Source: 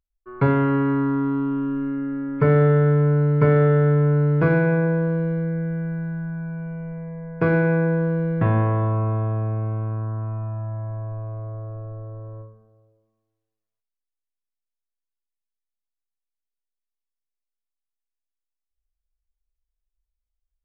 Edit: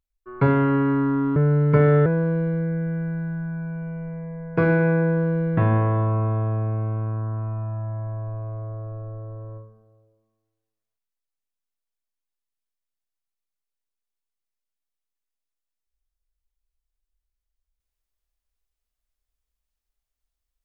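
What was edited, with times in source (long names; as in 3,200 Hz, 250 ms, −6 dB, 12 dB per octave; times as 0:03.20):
0:01.36–0:03.04: remove
0:03.74–0:04.90: remove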